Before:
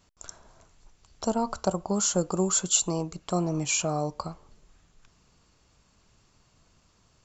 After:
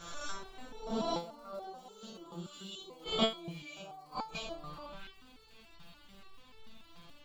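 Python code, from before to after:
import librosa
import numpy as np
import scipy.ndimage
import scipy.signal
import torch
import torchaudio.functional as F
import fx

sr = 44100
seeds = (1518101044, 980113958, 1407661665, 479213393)

p1 = fx.spec_swells(x, sr, rise_s=1.1)
p2 = p1 + fx.echo_multitap(p1, sr, ms=(46, 59, 661), db=(-8.5, -10.0, -19.5), dry=0)
p3 = fx.gate_flip(p2, sr, shuts_db=-18.0, range_db=-28)
p4 = fx.high_shelf_res(p3, sr, hz=4800.0, db=-9.5, q=3.0)
p5 = fx.dmg_crackle(p4, sr, seeds[0], per_s=120.0, level_db=-53.0)
p6 = fx.level_steps(p5, sr, step_db=14)
p7 = p5 + (p6 * 10.0 ** (-2.0 / 20.0))
p8 = fx.resonator_held(p7, sr, hz=6.9, low_hz=170.0, high_hz=440.0)
y = p8 * 10.0 ** (14.0 / 20.0)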